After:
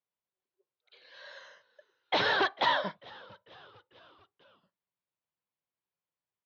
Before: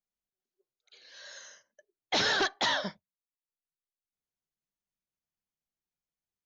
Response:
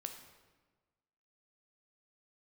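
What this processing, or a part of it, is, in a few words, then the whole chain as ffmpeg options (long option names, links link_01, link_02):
frequency-shifting delay pedal into a guitar cabinet: -filter_complex "[0:a]asplit=5[link_01][link_02][link_03][link_04][link_05];[link_02]adelay=446,afreqshift=-95,volume=-23dB[link_06];[link_03]adelay=892,afreqshift=-190,volume=-27.3dB[link_07];[link_04]adelay=1338,afreqshift=-285,volume=-31.6dB[link_08];[link_05]adelay=1784,afreqshift=-380,volume=-35.9dB[link_09];[link_01][link_06][link_07][link_08][link_09]amix=inputs=5:normalize=0,highpass=110,equalizer=frequency=110:width_type=q:width=4:gain=4,equalizer=frequency=230:width_type=q:width=4:gain=-6,equalizer=frequency=530:width_type=q:width=4:gain=5,equalizer=frequency=1000:width_type=q:width=4:gain=7,lowpass=frequency=3800:width=0.5412,lowpass=frequency=3800:width=1.3066"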